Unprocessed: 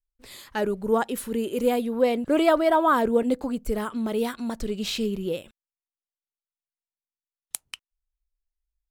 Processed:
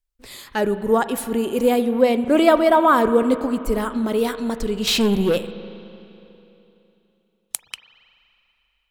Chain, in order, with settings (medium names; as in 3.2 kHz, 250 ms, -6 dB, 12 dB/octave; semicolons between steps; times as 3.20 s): 4.87–5.38 s: waveshaping leveller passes 2; reverberation RT60 3.1 s, pre-delay 39 ms, DRR 11.5 dB; trim +5 dB